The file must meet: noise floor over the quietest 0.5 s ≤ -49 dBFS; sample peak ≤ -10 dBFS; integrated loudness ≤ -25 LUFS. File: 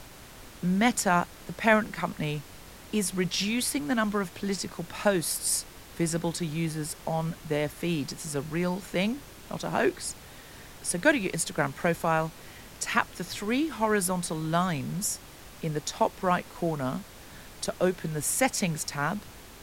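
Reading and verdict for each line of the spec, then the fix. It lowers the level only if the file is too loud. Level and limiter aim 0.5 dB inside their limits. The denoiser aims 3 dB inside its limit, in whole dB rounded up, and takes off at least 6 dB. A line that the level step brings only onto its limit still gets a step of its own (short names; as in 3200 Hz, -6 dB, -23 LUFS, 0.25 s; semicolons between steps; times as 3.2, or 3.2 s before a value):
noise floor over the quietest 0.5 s -47 dBFS: fail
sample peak -8.0 dBFS: fail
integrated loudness -29.0 LUFS: OK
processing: denoiser 6 dB, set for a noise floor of -47 dBFS; limiter -10.5 dBFS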